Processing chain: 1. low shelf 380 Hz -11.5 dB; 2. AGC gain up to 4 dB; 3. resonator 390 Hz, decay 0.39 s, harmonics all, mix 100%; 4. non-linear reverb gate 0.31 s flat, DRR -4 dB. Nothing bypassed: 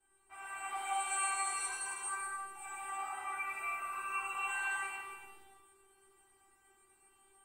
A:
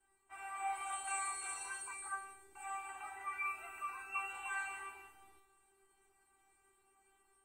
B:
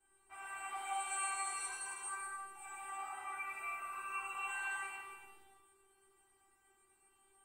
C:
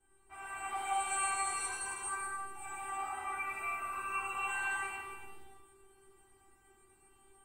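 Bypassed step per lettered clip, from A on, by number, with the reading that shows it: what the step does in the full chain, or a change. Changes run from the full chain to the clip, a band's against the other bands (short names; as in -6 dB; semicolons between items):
4, 4 kHz band -2.5 dB; 2, momentary loudness spread change -1 LU; 1, 500 Hz band +4.5 dB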